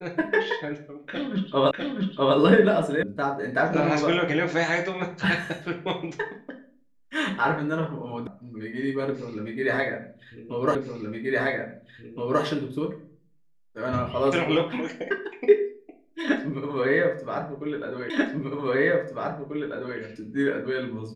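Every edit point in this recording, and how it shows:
0:01.71: the same again, the last 0.65 s
0:03.03: cut off before it has died away
0:08.27: cut off before it has died away
0:10.75: the same again, the last 1.67 s
0:18.10: the same again, the last 1.89 s

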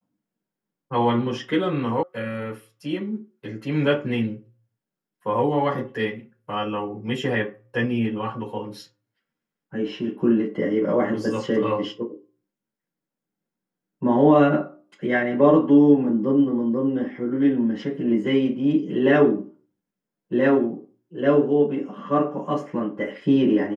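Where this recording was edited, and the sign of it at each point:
0:02.03: cut off before it has died away

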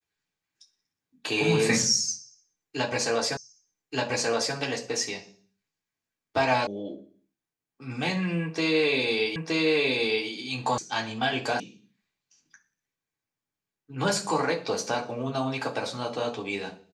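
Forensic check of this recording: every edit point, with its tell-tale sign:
0:03.37: the same again, the last 1.18 s
0:06.67: cut off before it has died away
0:09.36: the same again, the last 0.92 s
0:10.78: cut off before it has died away
0:11.60: cut off before it has died away

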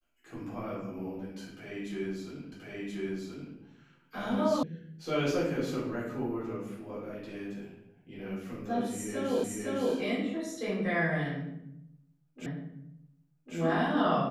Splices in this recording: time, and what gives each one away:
0:02.52: the same again, the last 1.03 s
0:04.63: cut off before it has died away
0:09.44: the same again, the last 0.51 s
0:12.46: the same again, the last 1.1 s

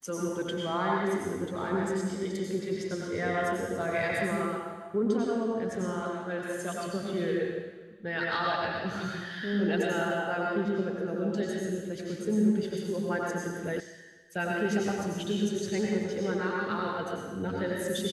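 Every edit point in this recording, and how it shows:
0:13.80: cut off before it has died away

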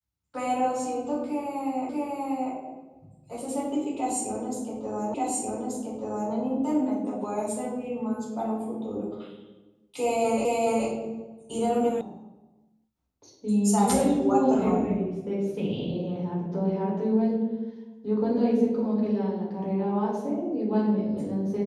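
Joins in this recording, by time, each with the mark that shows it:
0:01.89: the same again, the last 0.64 s
0:05.14: the same again, the last 1.18 s
0:10.45: the same again, the last 0.42 s
0:12.01: cut off before it has died away

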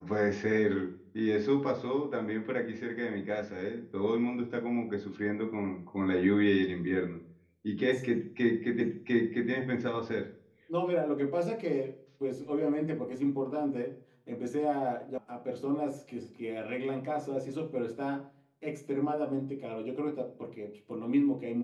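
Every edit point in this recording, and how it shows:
0:08.81: the same again, the last 0.7 s
0:15.18: cut off before it has died away

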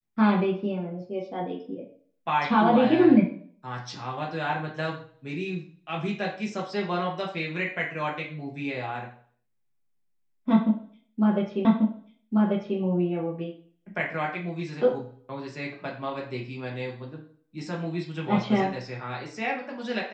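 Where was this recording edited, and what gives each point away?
0:11.65: the same again, the last 1.14 s

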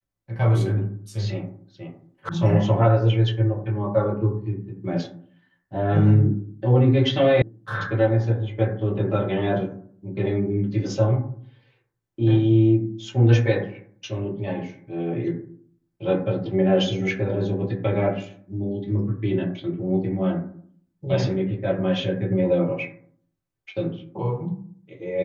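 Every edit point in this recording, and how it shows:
0:02.29: cut off before it has died away
0:07.42: cut off before it has died away

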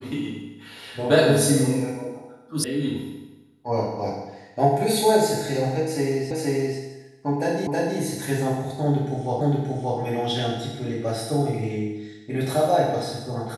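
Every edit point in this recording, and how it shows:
0:02.64: cut off before it has died away
0:06.31: the same again, the last 0.48 s
0:07.67: the same again, the last 0.32 s
0:09.41: the same again, the last 0.58 s

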